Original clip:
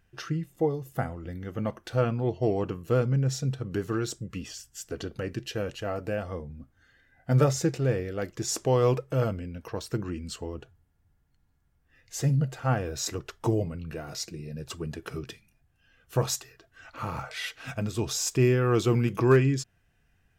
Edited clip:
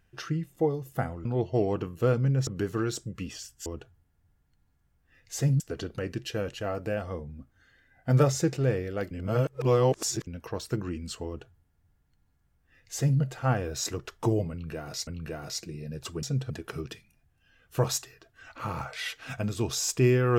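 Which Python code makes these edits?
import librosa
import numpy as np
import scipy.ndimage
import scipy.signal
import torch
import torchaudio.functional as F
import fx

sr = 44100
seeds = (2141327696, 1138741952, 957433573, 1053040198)

y = fx.edit(x, sr, fx.cut(start_s=1.25, length_s=0.88),
    fx.move(start_s=3.35, length_s=0.27, to_s=14.88),
    fx.reverse_span(start_s=8.32, length_s=1.16),
    fx.duplicate(start_s=10.47, length_s=1.94, to_s=4.81),
    fx.repeat(start_s=13.72, length_s=0.56, count=2), tone=tone)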